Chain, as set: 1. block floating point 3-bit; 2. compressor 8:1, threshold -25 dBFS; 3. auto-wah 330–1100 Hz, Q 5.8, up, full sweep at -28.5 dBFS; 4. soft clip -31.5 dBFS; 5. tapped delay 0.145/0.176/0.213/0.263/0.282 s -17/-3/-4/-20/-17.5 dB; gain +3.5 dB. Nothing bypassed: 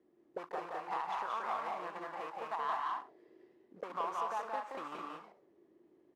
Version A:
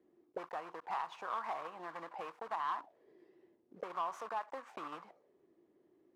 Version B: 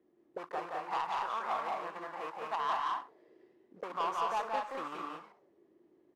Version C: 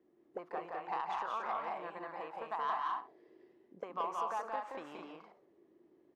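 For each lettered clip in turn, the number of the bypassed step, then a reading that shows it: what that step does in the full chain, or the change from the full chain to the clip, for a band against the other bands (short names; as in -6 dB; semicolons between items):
5, echo-to-direct 0.0 dB to none; 2, mean gain reduction 2.0 dB; 1, distortion -10 dB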